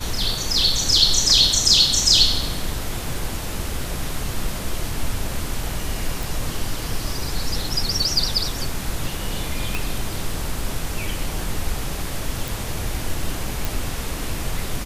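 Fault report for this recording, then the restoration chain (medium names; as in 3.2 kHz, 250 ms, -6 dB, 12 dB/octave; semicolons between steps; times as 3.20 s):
6.23 s: pop
9.75 s: pop
12.48 s: pop
13.65 s: pop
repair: de-click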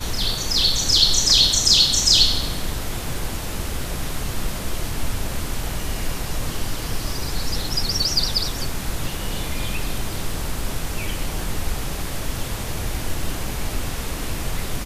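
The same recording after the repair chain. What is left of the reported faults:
9.75 s: pop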